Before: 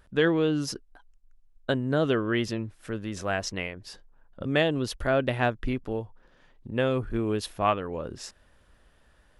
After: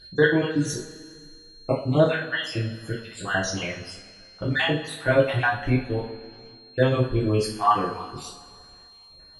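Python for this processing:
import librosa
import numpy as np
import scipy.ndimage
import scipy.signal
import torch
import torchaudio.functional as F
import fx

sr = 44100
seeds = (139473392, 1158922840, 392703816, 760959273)

y = fx.spec_dropout(x, sr, seeds[0], share_pct=58)
y = y + 10.0 ** (-51.0 / 20.0) * np.sin(2.0 * np.pi * 4200.0 * np.arange(len(y)) / sr)
y = fx.rev_double_slope(y, sr, seeds[1], early_s=0.39, late_s=2.1, knee_db=-18, drr_db=-6.0)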